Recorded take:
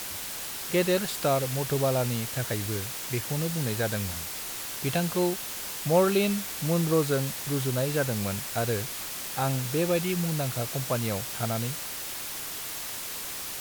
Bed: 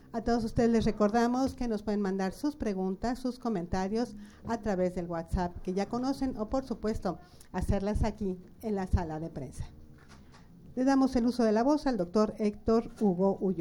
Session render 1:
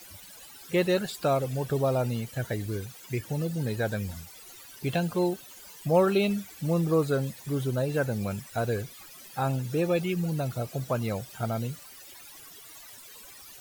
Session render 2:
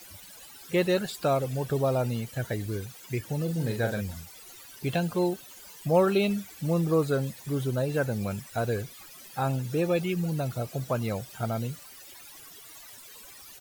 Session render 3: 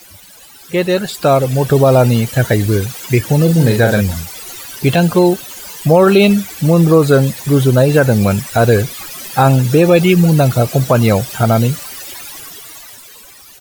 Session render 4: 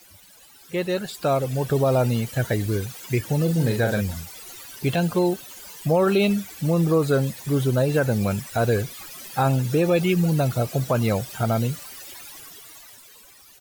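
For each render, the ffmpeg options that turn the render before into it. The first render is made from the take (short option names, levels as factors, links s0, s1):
-af "afftdn=nr=17:nf=-36"
-filter_complex "[0:a]asplit=3[s0][s1][s2];[s0]afade=t=out:st=3.47:d=0.02[s3];[s1]asplit=2[s4][s5];[s5]adelay=43,volume=0.473[s6];[s4][s6]amix=inputs=2:normalize=0,afade=t=in:st=3.47:d=0.02,afade=t=out:st=4:d=0.02[s7];[s2]afade=t=in:st=4:d=0.02[s8];[s3][s7][s8]amix=inputs=3:normalize=0"
-af "dynaudnorm=f=160:g=17:m=3.98,alimiter=level_in=2.37:limit=0.891:release=50:level=0:latency=1"
-af "volume=0.299"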